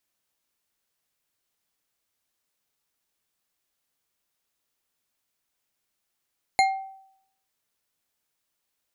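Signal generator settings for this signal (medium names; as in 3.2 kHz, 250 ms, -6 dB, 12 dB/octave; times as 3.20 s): glass hit bar, lowest mode 772 Hz, decay 0.71 s, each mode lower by 4.5 dB, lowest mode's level -15 dB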